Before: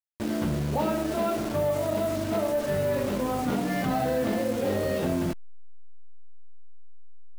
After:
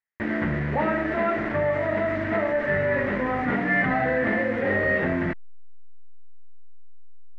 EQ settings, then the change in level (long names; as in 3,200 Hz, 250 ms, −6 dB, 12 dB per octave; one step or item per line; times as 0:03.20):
low-pass with resonance 1,900 Hz, resonance Q 7.5
+1.0 dB